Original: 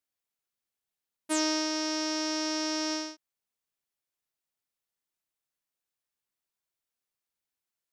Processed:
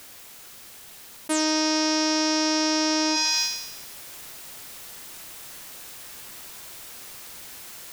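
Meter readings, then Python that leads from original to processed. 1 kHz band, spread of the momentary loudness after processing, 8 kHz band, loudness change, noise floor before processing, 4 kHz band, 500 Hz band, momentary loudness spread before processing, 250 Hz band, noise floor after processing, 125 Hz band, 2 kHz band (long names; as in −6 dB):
+9.0 dB, 21 LU, +9.0 dB, +7.5 dB, below −85 dBFS, +9.5 dB, +7.0 dB, 5 LU, +7.5 dB, −45 dBFS, can't be measured, +9.0 dB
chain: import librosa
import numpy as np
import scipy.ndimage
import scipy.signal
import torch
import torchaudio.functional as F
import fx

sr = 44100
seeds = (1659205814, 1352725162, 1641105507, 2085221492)

y = fx.rider(x, sr, range_db=10, speed_s=0.5)
y = fx.echo_thinned(y, sr, ms=88, feedback_pct=53, hz=1100.0, wet_db=-13.5)
y = fx.env_flatten(y, sr, amount_pct=100)
y = y * 10.0 ** (6.0 / 20.0)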